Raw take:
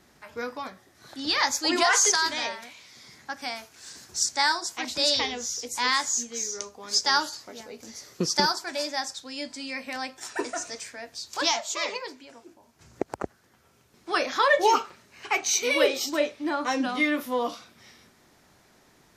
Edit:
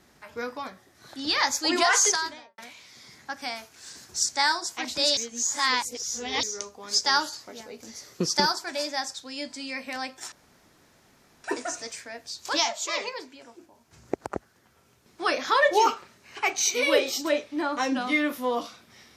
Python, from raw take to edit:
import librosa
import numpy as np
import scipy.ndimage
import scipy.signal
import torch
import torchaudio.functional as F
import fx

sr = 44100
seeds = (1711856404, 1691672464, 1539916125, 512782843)

y = fx.studio_fade_out(x, sr, start_s=2.04, length_s=0.54)
y = fx.edit(y, sr, fx.reverse_span(start_s=5.17, length_s=1.26),
    fx.insert_room_tone(at_s=10.32, length_s=1.12), tone=tone)